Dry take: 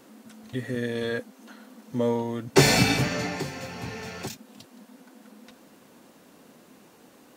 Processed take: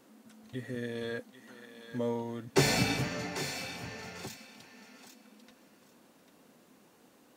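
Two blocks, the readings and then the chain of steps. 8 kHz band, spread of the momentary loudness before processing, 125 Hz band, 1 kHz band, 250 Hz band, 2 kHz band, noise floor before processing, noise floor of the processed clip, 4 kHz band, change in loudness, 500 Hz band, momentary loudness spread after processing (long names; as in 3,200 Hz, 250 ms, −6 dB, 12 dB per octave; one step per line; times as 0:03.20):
−7.5 dB, 17 LU, −8.0 dB, −7.5 dB, −8.0 dB, −7.5 dB, −55 dBFS, −63 dBFS, −7.5 dB, −7.5 dB, −8.0 dB, 25 LU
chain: feedback echo with a high-pass in the loop 795 ms, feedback 21%, high-pass 1,000 Hz, level −8 dB
level −8 dB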